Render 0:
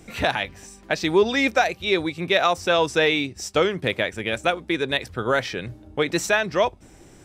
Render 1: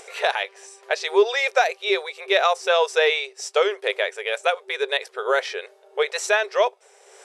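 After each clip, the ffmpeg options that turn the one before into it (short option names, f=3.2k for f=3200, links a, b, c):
-af "lowshelf=f=490:g=3,afftfilt=real='re*between(b*sr/4096,380,12000)':imag='im*between(b*sr/4096,380,12000)':win_size=4096:overlap=0.75,acompressor=mode=upward:threshold=-38dB:ratio=2.5"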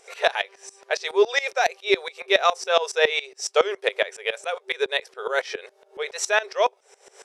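-af "equalizer=f=5.6k:t=o:w=0.35:g=4,aeval=exprs='val(0)*pow(10,-19*if(lt(mod(-7.2*n/s,1),2*abs(-7.2)/1000),1-mod(-7.2*n/s,1)/(2*abs(-7.2)/1000),(mod(-7.2*n/s,1)-2*abs(-7.2)/1000)/(1-2*abs(-7.2)/1000))/20)':c=same,volume=4.5dB"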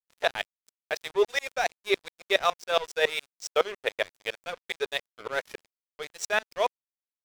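-af "aeval=exprs='sgn(val(0))*max(abs(val(0))-0.0266,0)':c=same,volume=-4dB"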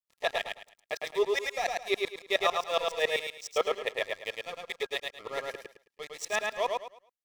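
-filter_complex "[0:a]asuperstop=centerf=1500:order=20:qfactor=6.6,asplit=2[a][b];[b]aecho=0:1:107|214|321|428:0.708|0.191|0.0516|0.0139[c];[a][c]amix=inputs=2:normalize=0,volume=-4dB"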